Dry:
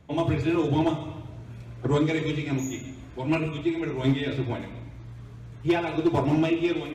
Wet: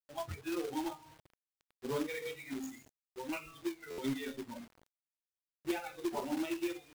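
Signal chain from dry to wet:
adaptive Wiener filter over 9 samples
comb and all-pass reverb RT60 1.2 s, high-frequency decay 0.55×, pre-delay 80 ms, DRR 14 dB
noise reduction from a noise print of the clip's start 24 dB
log-companded quantiser 4 bits
downward compressor 1.5 to 1, threshold −40 dBFS, peak gain reduction 8 dB
buffer that repeats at 0:03.90, samples 512, times 6
level −4 dB

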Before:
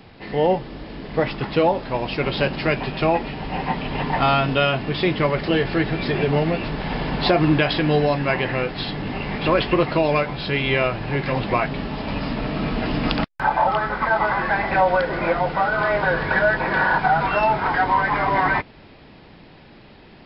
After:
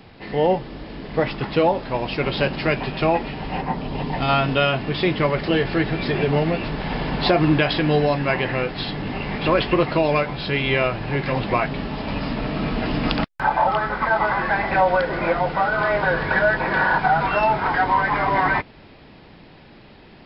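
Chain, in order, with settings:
0:03.60–0:04.28: parametric band 3,600 Hz → 1,000 Hz −9 dB 1.6 octaves

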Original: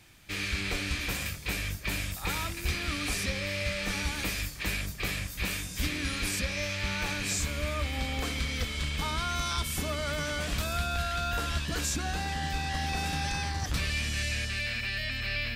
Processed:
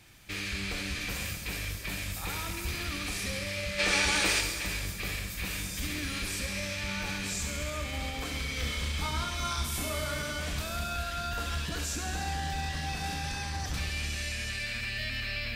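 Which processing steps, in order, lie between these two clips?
brickwall limiter −26.5 dBFS, peak gain reduction 5.5 dB
0:03.79–0:04.41: gain on a spectral selection 300–10,000 Hz +10 dB
0:08.54–0:10.23: double-tracking delay 29 ms −3 dB
delay with a high-pass on its return 68 ms, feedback 79%, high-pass 4,900 Hz, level −6 dB
on a send at −6.5 dB: convolution reverb RT60 2.1 s, pre-delay 31 ms

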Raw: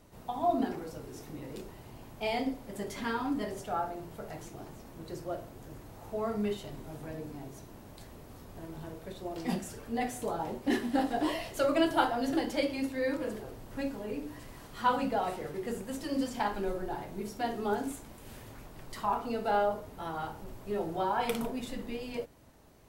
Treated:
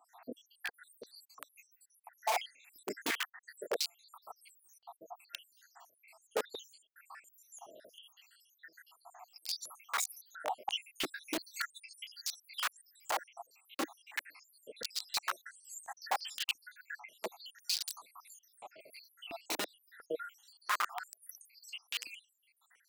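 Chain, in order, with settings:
time-frequency cells dropped at random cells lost 85%
wrap-around overflow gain 32.5 dB
high-pass on a step sequencer 2.9 Hz 300–7,200 Hz
level +2.5 dB

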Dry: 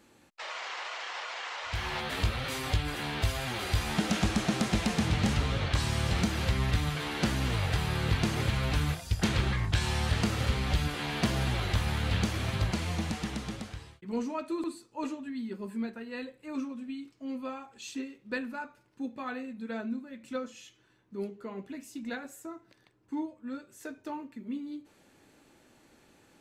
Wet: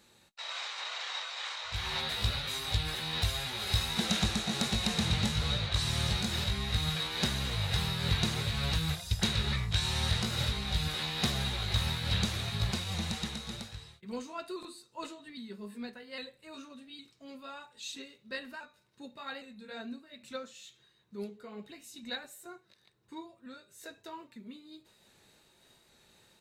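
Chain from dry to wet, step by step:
pitch shifter swept by a sawtooth +1.5 semitones, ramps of 809 ms
guitar amp tone stack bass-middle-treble 10-0-10
hollow resonant body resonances 220/340/3,800 Hz, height 16 dB, ringing for 20 ms
level +2 dB

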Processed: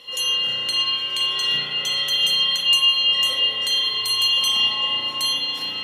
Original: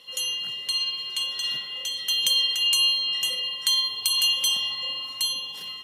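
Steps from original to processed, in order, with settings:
high-shelf EQ 5,600 Hz −6.5 dB
brickwall limiter −21 dBFS, peak gain reduction 10 dB
spring reverb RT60 3 s, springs 34 ms, chirp 30 ms, DRR −5 dB
level +7 dB

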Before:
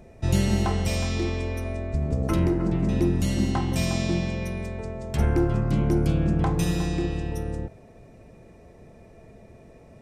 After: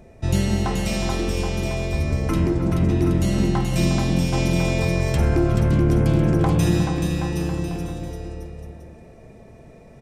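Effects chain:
bouncing-ball delay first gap 430 ms, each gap 0.8×, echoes 5
0:04.33–0:06.83: envelope flattener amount 50%
level +1.5 dB

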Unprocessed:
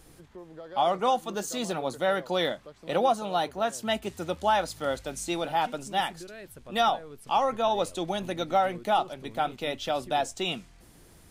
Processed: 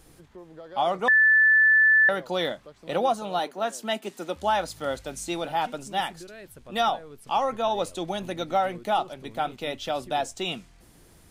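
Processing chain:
0:01.08–0:02.09: beep over 1,750 Hz −14.5 dBFS
0:03.39–0:04.36: high-pass filter 200 Hz 24 dB per octave

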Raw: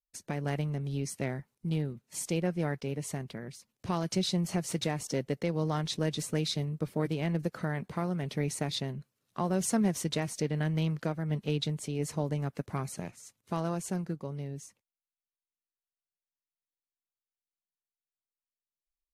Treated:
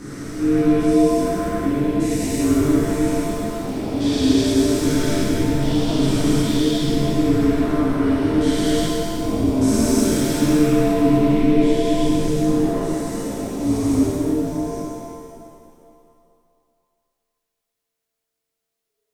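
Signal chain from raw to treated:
spectrum averaged block by block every 400 ms
frequency shifter −450 Hz
reverb with rising layers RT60 2.3 s, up +7 semitones, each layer −8 dB, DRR −11.5 dB
level +4.5 dB

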